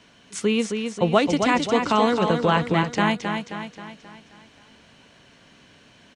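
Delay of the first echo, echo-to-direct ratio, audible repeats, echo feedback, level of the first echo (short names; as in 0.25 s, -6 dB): 0.266 s, -5.0 dB, 5, 50%, -6.0 dB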